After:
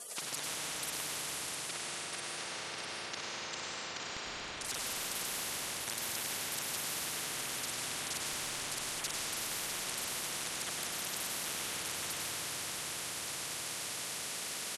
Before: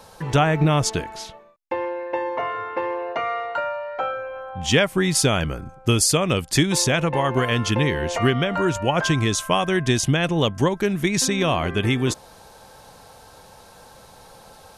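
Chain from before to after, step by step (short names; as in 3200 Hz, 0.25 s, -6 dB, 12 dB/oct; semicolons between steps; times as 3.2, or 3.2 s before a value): local time reversal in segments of 36 ms; LPF 8400 Hz 24 dB/oct; LFO high-pass saw down 0.24 Hz 550–2100 Hz; spectral gate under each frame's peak -20 dB weak; feedback echo 0.651 s, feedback 39%, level -17 dB; reverb RT60 2.0 s, pre-delay 92 ms, DRR -5 dB; spectral compressor 10:1; gain -7 dB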